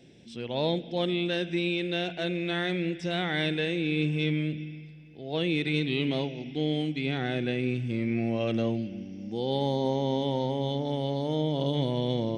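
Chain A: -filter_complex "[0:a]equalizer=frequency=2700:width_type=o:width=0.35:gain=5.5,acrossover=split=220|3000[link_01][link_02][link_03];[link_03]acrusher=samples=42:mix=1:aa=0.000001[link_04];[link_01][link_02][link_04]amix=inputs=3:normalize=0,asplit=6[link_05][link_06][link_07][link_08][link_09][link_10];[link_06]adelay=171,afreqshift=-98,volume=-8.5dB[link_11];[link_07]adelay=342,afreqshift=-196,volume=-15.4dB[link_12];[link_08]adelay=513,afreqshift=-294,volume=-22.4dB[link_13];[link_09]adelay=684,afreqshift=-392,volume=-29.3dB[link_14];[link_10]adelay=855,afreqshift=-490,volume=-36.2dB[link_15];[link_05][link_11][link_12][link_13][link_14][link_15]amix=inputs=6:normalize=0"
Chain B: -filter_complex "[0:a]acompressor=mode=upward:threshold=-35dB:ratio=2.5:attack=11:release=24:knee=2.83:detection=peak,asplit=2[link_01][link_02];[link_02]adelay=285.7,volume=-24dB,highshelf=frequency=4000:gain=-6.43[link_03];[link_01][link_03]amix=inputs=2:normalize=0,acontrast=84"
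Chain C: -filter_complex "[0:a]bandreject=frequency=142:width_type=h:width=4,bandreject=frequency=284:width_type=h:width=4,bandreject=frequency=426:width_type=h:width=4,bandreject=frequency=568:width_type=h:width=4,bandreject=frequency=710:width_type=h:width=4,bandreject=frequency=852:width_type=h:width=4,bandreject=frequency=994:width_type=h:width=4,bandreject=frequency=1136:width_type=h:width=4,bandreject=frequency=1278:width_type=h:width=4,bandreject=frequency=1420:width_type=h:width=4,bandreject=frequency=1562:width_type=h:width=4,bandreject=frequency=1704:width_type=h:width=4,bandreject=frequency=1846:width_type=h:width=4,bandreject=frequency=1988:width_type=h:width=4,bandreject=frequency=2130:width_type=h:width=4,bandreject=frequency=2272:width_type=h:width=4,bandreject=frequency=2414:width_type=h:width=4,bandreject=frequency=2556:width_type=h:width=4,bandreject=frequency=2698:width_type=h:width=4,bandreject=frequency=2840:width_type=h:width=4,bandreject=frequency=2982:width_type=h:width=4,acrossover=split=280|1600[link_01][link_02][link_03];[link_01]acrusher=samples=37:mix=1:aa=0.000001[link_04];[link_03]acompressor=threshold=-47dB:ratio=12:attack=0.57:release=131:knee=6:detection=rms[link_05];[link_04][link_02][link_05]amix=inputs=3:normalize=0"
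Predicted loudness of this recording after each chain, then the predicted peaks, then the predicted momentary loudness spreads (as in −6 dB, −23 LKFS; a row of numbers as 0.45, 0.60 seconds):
−29.0, −22.5, −31.0 LKFS; −14.5, −8.5, −16.0 dBFS; 7, 6, 6 LU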